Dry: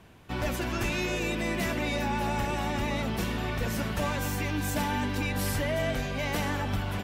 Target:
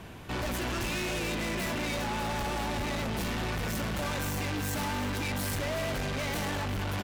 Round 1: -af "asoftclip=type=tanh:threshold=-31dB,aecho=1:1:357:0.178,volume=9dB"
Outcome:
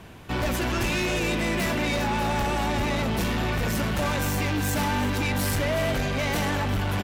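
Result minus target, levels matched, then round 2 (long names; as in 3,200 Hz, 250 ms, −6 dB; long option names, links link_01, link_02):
soft clipping: distortion −5 dB
-af "asoftclip=type=tanh:threshold=-40dB,aecho=1:1:357:0.178,volume=9dB"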